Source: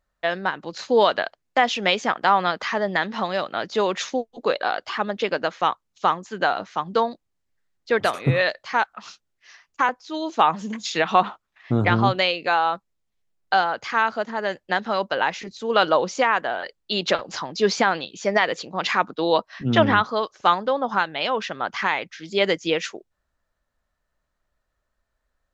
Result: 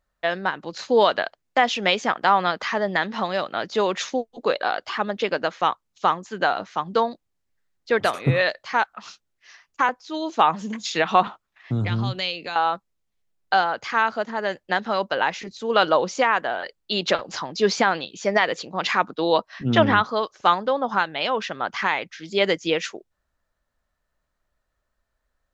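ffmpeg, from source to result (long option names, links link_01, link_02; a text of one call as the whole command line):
ffmpeg -i in.wav -filter_complex "[0:a]asettb=1/sr,asplit=3[link_01][link_02][link_03];[link_01]atrim=end=11.274[link_04];[link_02]atrim=start=11.27:end=12.56,asetpts=PTS-STARTPTS,afade=type=in:duration=0.004:curve=qsin,afade=type=out:start_time=1.286:duration=0.004:curve=qsin,acrossover=split=200|3000[link_05][link_06][link_07];[link_06]acompressor=threshold=-34dB:ratio=3:attack=3.2:release=140:knee=2.83:detection=peak[link_08];[link_05][link_08][link_07]amix=inputs=3:normalize=0[link_09];[link_03]atrim=start=12.556[link_10];[link_04][link_09]acrossfade=duration=0.004:curve1=hsin:curve2=qsin[link_11];[link_11][link_10]acrossfade=duration=0.004:curve1=qsin:curve2=hsin" out.wav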